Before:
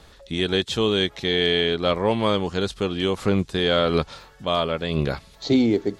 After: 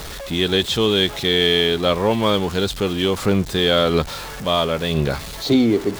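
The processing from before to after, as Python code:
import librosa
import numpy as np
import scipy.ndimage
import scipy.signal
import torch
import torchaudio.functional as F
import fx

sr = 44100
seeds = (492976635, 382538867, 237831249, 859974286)

y = x + 0.5 * 10.0 ** (-29.5 / 20.0) * np.sign(x)
y = fx.dynamic_eq(y, sr, hz=3500.0, q=5.9, threshold_db=-36.0, ratio=4.0, max_db=4)
y = y * librosa.db_to_amplitude(2.0)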